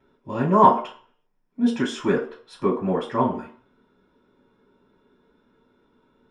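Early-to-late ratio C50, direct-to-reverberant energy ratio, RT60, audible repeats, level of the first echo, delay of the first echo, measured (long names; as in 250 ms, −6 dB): 8.5 dB, −15.0 dB, 0.50 s, no echo audible, no echo audible, no echo audible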